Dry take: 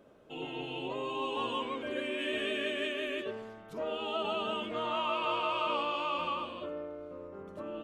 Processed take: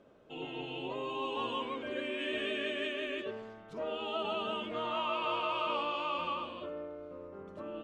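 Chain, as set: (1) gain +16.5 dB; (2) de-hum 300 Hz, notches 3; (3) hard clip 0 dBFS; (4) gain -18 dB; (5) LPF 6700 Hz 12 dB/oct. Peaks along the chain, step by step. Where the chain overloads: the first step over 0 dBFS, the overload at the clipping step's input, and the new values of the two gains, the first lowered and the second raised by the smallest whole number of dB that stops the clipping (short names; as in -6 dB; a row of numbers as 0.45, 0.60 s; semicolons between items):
-2.0, -2.5, -2.5, -20.5, -20.5 dBFS; no overload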